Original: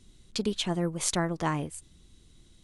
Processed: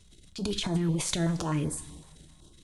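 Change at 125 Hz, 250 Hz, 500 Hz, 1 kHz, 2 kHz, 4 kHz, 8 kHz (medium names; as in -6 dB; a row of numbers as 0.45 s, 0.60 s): +4.0 dB, +1.5 dB, -2.5 dB, -5.5 dB, -3.5 dB, -0.5 dB, -1.5 dB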